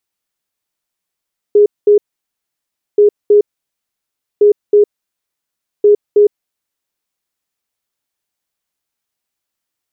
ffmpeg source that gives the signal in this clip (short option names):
-f lavfi -i "aevalsrc='0.631*sin(2*PI*414*t)*clip(min(mod(mod(t,1.43),0.32),0.11-mod(mod(t,1.43),0.32))/0.005,0,1)*lt(mod(t,1.43),0.64)':d=5.72:s=44100"